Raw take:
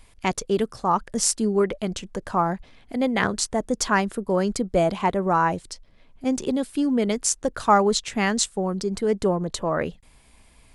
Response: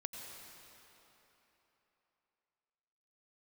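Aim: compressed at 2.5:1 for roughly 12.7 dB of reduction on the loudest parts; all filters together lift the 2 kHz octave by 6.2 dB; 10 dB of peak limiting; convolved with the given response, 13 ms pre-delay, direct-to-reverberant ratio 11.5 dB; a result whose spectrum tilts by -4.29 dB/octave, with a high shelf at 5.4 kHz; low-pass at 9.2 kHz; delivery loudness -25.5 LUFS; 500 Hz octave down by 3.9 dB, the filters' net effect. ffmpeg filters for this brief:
-filter_complex "[0:a]lowpass=9200,equalizer=f=500:t=o:g=-5.5,equalizer=f=2000:t=o:g=8.5,highshelf=f=5400:g=-5,acompressor=threshold=0.0251:ratio=2.5,alimiter=level_in=1.12:limit=0.0631:level=0:latency=1,volume=0.891,asplit=2[s0][s1];[1:a]atrim=start_sample=2205,adelay=13[s2];[s1][s2]afir=irnorm=-1:irlink=0,volume=0.316[s3];[s0][s3]amix=inputs=2:normalize=0,volume=3.16"

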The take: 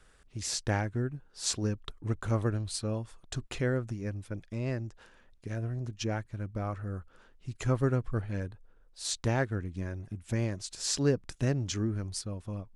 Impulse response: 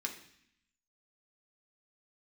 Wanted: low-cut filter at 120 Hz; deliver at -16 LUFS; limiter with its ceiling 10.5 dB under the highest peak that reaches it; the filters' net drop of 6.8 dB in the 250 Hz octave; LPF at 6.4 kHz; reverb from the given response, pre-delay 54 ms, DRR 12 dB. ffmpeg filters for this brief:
-filter_complex "[0:a]highpass=120,lowpass=6400,equalizer=f=250:t=o:g=-8.5,alimiter=level_in=1.41:limit=0.0631:level=0:latency=1,volume=0.708,asplit=2[s0][s1];[1:a]atrim=start_sample=2205,adelay=54[s2];[s1][s2]afir=irnorm=-1:irlink=0,volume=0.224[s3];[s0][s3]amix=inputs=2:normalize=0,volume=15"

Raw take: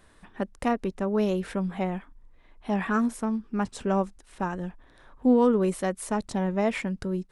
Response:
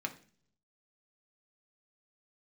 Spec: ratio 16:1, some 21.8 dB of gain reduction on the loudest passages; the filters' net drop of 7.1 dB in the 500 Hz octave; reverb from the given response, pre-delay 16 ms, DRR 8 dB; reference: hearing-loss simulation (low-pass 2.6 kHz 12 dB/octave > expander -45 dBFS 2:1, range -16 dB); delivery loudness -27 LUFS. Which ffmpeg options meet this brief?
-filter_complex "[0:a]equalizer=f=500:t=o:g=-9,acompressor=threshold=0.01:ratio=16,asplit=2[s0][s1];[1:a]atrim=start_sample=2205,adelay=16[s2];[s1][s2]afir=irnorm=-1:irlink=0,volume=0.316[s3];[s0][s3]amix=inputs=2:normalize=0,lowpass=2600,agate=range=0.158:threshold=0.00562:ratio=2,volume=7.5"

